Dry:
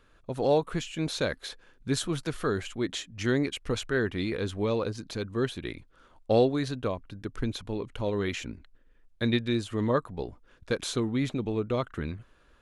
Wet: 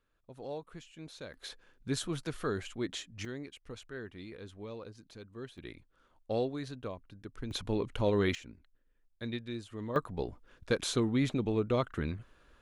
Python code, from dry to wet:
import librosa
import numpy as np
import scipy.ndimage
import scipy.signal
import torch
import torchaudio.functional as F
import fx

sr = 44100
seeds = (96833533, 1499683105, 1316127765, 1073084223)

y = fx.gain(x, sr, db=fx.steps((0.0, -17.0), (1.34, -5.5), (3.25, -16.0), (5.58, -10.0), (7.51, 1.0), (8.35, -12.0), (9.96, -1.0)))